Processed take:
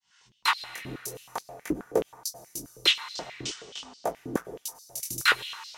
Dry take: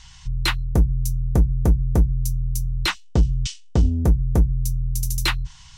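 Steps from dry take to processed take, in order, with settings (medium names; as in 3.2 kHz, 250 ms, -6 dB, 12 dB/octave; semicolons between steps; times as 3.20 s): fade-in on the opening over 0.56 s; chorus 0.47 Hz, delay 17.5 ms, depth 6.8 ms; reverberation RT60 2.8 s, pre-delay 90 ms, DRR 12.5 dB; step-sequenced high-pass 9.4 Hz 310–4500 Hz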